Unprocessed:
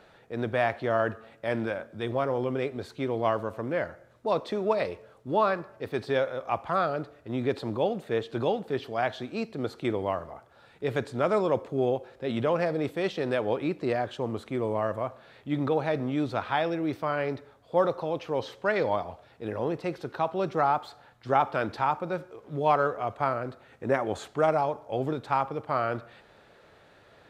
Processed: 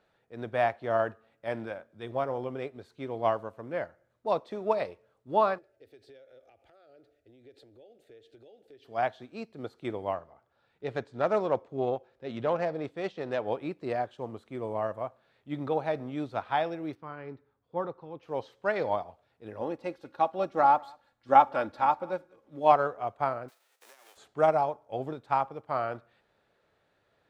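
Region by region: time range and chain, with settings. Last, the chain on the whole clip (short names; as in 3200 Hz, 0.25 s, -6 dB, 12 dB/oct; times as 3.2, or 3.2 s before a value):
5.58–8.85 compressor 16:1, threshold -34 dBFS + fixed phaser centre 430 Hz, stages 4
10.14–13.46 self-modulated delay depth 0.086 ms + LPF 6700 Hz
16.95–18.23 LPF 1300 Hz 6 dB/oct + bell 630 Hz -12.5 dB 0.41 oct
19.61–22.72 comb 3.6 ms, depth 52% + echo 0.192 s -18 dB
23.48–24.16 spectral whitening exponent 0.3 + HPF 400 Hz 24 dB/oct + compressor 10:1, threshold -38 dBFS
whole clip: dynamic EQ 750 Hz, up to +5 dB, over -37 dBFS, Q 1.8; upward expander 1.5:1, over -43 dBFS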